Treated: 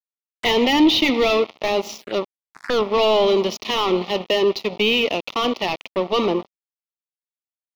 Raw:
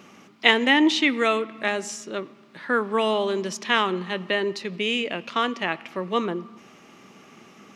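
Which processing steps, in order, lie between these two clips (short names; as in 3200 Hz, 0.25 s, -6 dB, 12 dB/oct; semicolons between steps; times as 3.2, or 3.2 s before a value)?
crossover distortion -35.5 dBFS; overdrive pedal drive 29 dB, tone 2500 Hz, clips at -2 dBFS; envelope phaser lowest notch 350 Hz, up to 1600 Hz, full sweep at -20.5 dBFS; gain -2.5 dB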